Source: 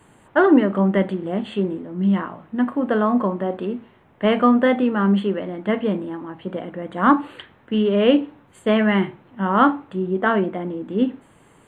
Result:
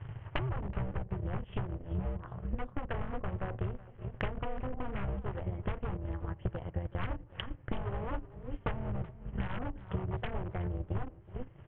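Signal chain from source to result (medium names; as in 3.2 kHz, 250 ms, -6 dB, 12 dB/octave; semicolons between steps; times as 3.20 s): AM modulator 260 Hz, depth 60%; low-pass that closes with the level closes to 320 Hz, closed at -16 dBFS; on a send: feedback delay 394 ms, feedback 33%, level -20 dB; on the sum: wavefolder -22 dBFS; transient shaper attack +10 dB, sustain -11 dB; resonant low shelf 160 Hz +11.5 dB, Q 3; overload inside the chain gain 12 dB; Chebyshev low-pass 3.1 kHz, order 5; compression 4:1, threshold -36 dBFS, peak gain reduction 17 dB; modulated delay 374 ms, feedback 42%, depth 77 cents, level -19 dB; trim +1.5 dB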